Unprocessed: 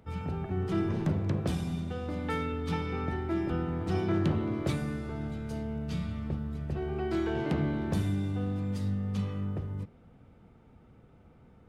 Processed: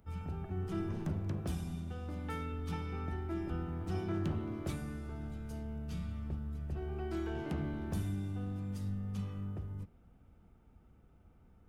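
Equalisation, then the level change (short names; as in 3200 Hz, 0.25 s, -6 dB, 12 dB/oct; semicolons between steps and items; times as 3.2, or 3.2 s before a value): ten-band EQ 125 Hz -10 dB, 250 Hz -6 dB, 500 Hz -10 dB, 1000 Hz -6 dB, 2000 Hz -8 dB, 4000 Hz -9 dB, 8000 Hz -4 dB; +1.5 dB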